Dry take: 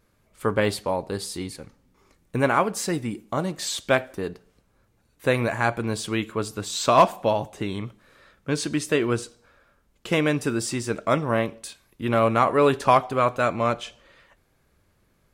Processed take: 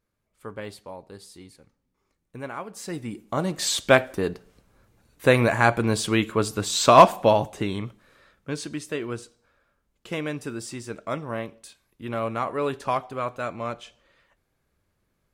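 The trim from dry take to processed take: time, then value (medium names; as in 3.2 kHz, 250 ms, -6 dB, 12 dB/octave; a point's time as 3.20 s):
2.64 s -14 dB
2.95 s -6 dB
3.67 s +4 dB
7.35 s +4 dB
8.85 s -8 dB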